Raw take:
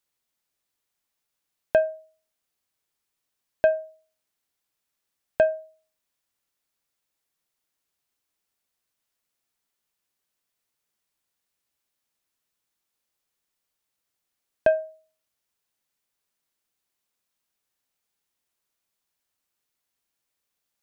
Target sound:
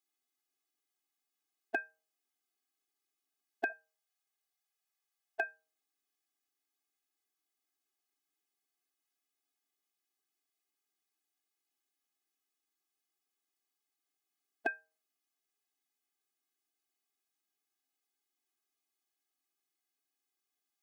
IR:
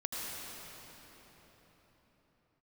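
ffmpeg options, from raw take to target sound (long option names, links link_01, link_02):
-filter_complex "[0:a]asplit=3[link_01][link_02][link_03];[link_01]afade=type=out:start_time=3.7:duration=0.02[link_04];[link_02]highpass=frequency=440:width=0.5412,highpass=frequency=440:width=1.3066,afade=type=in:start_time=3.7:duration=0.02,afade=type=out:start_time=5.41:duration=0.02[link_05];[link_03]afade=type=in:start_time=5.41:duration=0.02[link_06];[link_04][link_05][link_06]amix=inputs=3:normalize=0,afftfilt=real='re*eq(mod(floor(b*sr/1024/220),2),1)':imag='im*eq(mod(floor(b*sr/1024/220),2),1)':win_size=1024:overlap=0.75,volume=-3.5dB"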